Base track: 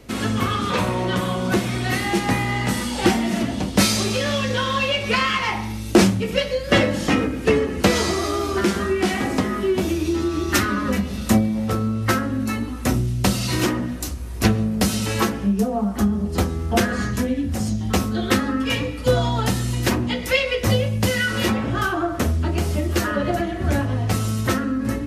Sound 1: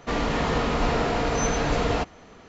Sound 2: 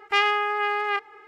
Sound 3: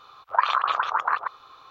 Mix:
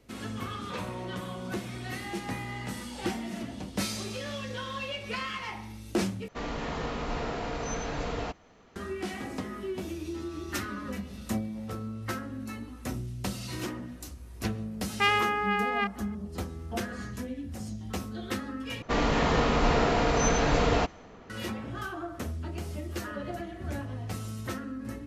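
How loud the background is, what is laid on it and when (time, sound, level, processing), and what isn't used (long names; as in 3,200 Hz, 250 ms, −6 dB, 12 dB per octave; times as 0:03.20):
base track −14.5 dB
0:06.28: overwrite with 1 −9.5 dB
0:14.88: mix in 2 −3.5 dB
0:18.82: overwrite with 1 −0.5 dB + one half of a high-frequency compander decoder only
not used: 3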